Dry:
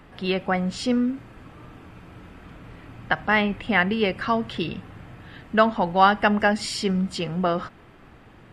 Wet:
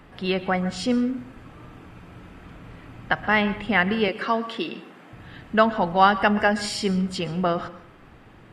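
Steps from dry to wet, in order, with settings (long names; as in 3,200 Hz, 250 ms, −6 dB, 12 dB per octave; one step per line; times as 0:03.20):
0:04.08–0:05.13: high-pass filter 230 Hz 24 dB per octave
dense smooth reverb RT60 0.51 s, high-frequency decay 0.65×, pre-delay 110 ms, DRR 14.5 dB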